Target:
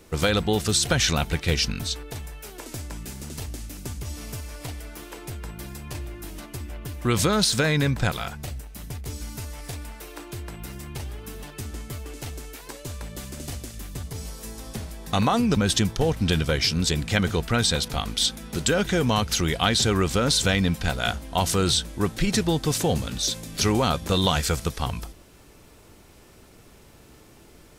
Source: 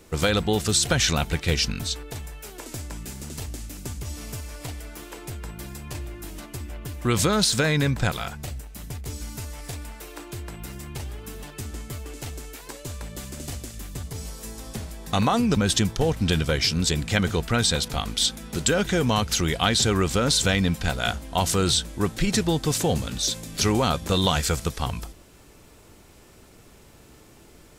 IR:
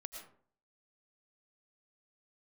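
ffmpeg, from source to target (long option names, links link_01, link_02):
-af "equalizer=frequency=7400:width=4.9:gain=-3"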